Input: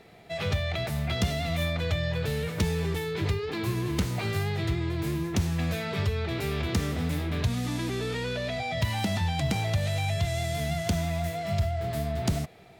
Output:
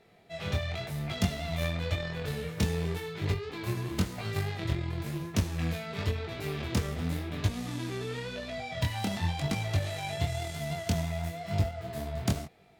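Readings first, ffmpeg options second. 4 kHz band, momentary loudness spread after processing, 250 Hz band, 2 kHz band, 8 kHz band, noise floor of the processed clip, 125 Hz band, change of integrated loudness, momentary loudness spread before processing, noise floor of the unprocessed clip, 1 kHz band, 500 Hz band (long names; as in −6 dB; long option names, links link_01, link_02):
−4.0 dB, 5 LU, −3.5 dB, −4.5 dB, −3.0 dB, −44 dBFS, −3.5 dB, −4.0 dB, 3 LU, −36 dBFS, −4.0 dB, −4.5 dB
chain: -af "aeval=exprs='0.158*(cos(1*acos(clip(val(0)/0.158,-1,1)))-cos(1*PI/2))+0.0355*(cos(3*acos(clip(val(0)/0.158,-1,1)))-cos(3*PI/2))':channel_layout=same,flanger=delay=19.5:depth=6.2:speed=0.94,volume=4.5dB"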